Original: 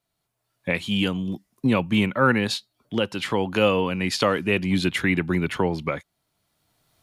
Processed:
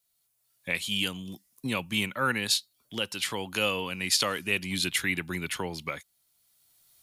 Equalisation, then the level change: pre-emphasis filter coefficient 0.9; bass shelf 61 Hz +7 dB; +7.0 dB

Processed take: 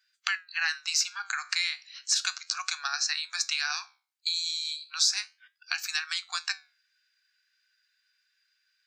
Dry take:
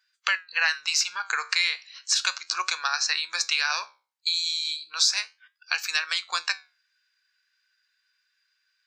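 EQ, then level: peaking EQ 950 Hz -12 dB 0.54 oct; dynamic bell 2.7 kHz, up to -6 dB, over -38 dBFS, Q 0.84; brick-wall FIR high-pass 690 Hz; 0.0 dB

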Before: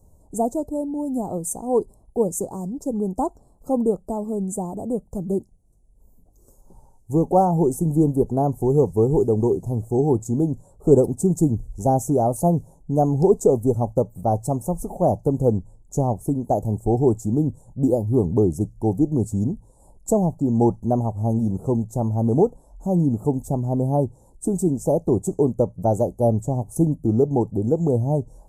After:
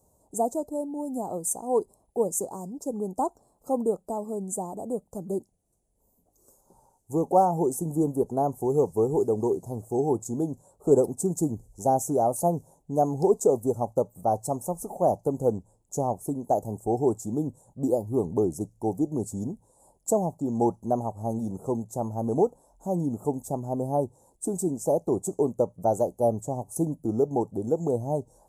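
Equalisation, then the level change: high-pass 110 Hz 6 dB/octave; bass shelf 350 Hz -10.5 dB; 0.0 dB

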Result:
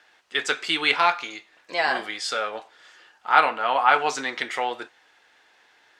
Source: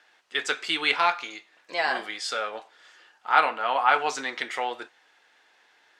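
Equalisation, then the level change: bass shelf 120 Hz +9 dB; +2.5 dB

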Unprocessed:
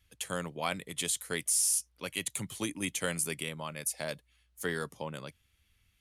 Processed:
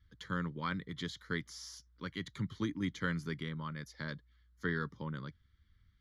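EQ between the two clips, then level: tape spacing loss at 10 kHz 27 dB; peaking EQ 520 Hz -4.5 dB 1.3 oct; static phaser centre 2.6 kHz, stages 6; +5.0 dB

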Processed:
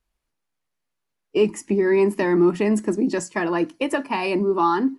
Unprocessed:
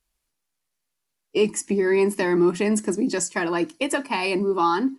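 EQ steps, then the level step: treble shelf 3.5 kHz -11.5 dB; +2.0 dB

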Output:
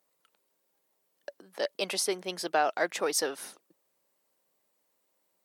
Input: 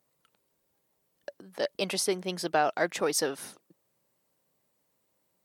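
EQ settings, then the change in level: Bessel high-pass 350 Hz, order 2; 0.0 dB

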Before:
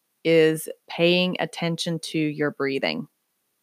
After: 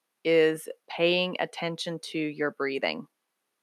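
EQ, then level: high-pass 540 Hz 6 dB/octave; brick-wall FIR low-pass 13 kHz; treble shelf 3.3 kHz -9.5 dB; 0.0 dB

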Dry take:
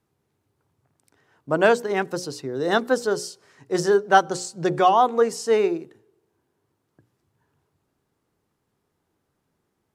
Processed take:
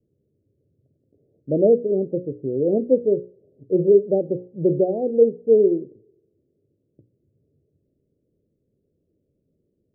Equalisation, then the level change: steep low-pass 590 Hz 72 dB/octave; +4.5 dB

